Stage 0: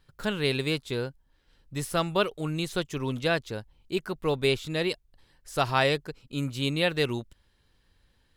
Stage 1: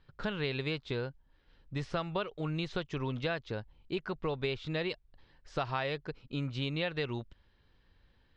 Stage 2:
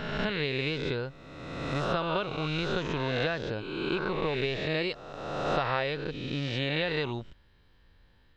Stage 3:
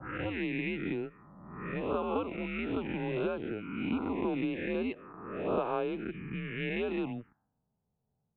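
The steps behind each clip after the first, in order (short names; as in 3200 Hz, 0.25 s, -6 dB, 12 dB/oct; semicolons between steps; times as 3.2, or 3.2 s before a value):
Bessel low-pass 3400 Hz, order 6; dynamic EQ 290 Hz, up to -4 dB, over -36 dBFS, Q 0.95; compressor 6:1, threshold -30 dBFS, peak gain reduction 10.5 dB
spectral swells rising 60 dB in 1.66 s; gain +1.5 dB
mistuned SSB -110 Hz 250–2700 Hz; envelope phaser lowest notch 320 Hz, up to 1900 Hz, full sweep at -27 dBFS; low-pass opened by the level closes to 320 Hz, open at -31.5 dBFS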